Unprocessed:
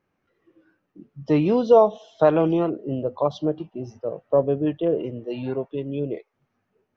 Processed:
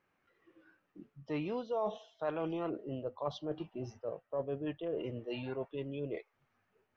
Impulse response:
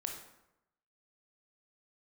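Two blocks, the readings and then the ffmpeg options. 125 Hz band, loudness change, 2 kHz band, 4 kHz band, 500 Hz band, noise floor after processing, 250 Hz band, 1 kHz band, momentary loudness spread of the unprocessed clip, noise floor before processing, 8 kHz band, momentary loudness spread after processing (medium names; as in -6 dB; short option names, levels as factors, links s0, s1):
-15.0 dB, -16.5 dB, -9.5 dB, -8.0 dB, -17.0 dB, -79 dBFS, -16.0 dB, -16.0 dB, 16 LU, -76 dBFS, no reading, 7 LU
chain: -af "equalizer=f=1900:w=0.37:g=9,areverse,acompressor=threshold=0.0447:ratio=4,areverse,asubboost=boost=2:cutoff=110,volume=0.398"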